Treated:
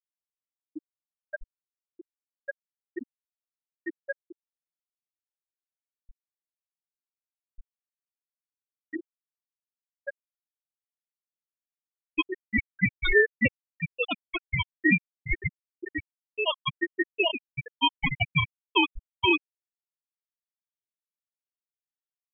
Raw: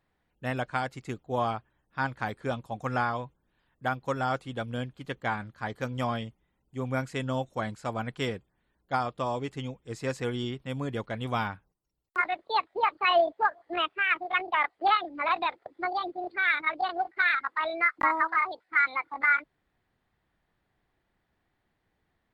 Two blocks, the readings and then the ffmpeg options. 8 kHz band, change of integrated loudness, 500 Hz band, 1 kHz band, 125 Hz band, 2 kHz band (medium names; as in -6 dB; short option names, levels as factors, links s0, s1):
no reading, +2.0 dB, -2.0 dB, -10.0 dB, -1.5 dB, -1.0 dB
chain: -af "aeval=exprs='val(0)*gte(abs(val(0)),0.00596)':c=same,aeval=exprs='val(0)*sin(2*PI*1100*n/s)':c=same,afftfilt=real='re*gte(hypot(re,im),0.224)':imag='im*gte(hypot(re,im),0.224)':win_size=1024:overlap=0.75,volume=2"